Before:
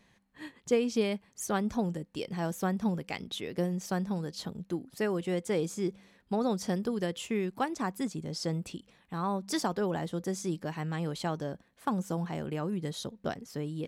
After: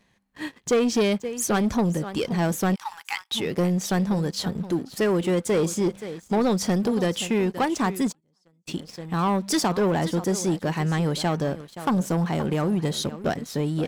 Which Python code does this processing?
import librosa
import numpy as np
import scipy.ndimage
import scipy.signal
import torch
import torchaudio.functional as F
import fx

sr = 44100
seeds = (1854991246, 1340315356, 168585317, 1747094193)

p1 = x + 10.0 ** (-16.0 / 20.0) * np.pad(x, (int(525 * sr / 1000.0), 0))[:len(x)]
p2 = fx.gate_flip(p1, sr, shuts_db=-32.0, range_db=-32, at=(8.11, 8.67), fade=0.02)
p3 = 10.0 ** (-30.5 / 20.0) * np.tanh(p2 / 10.0 ** (-30.5 / 20.0))
p4 = p2 + F.gain(torch.from_numpy(p3), -5.0).numpy()
p5 = fx.brickwall_highpass(p4, sr, low_hz=780.0, at=(2.74, 3.31), fade=0.02)
y = fx.leveller(p5, sr, passes=2)